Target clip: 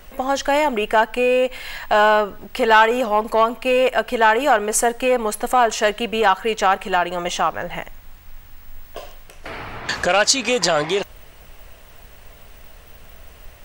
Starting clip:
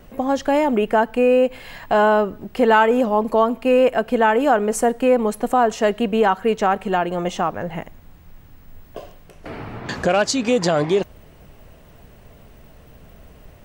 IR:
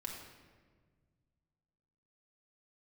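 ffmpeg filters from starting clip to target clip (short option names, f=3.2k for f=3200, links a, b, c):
-af "acontrast=28,equalizer=f=190:w=0.33:g=-15,volume=3dB"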